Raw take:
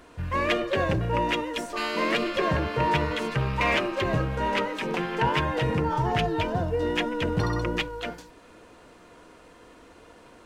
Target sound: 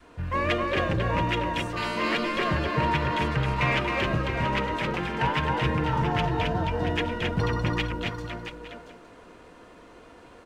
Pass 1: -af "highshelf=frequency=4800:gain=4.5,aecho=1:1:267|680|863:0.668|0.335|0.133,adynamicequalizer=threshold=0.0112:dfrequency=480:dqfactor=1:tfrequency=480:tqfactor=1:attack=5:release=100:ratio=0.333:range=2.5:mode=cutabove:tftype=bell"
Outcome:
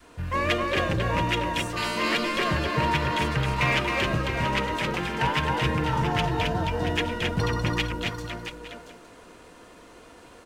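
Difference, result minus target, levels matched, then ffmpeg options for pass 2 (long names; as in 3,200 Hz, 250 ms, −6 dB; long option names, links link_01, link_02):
8,000 Hz band +7.0 dB
-af "highshelf=frequency=4800:gain=-7,aecho=1:1:267|680|863:0.668|0.335|0.133,adynamicequalizer=threshold=0.0112:dfrequency=480:dqfactor=1:tfrequency=480:tqfactor=1:attack=5:release=100:ratio=0.333:range=2.5:mode=cutabove:tftype=bell"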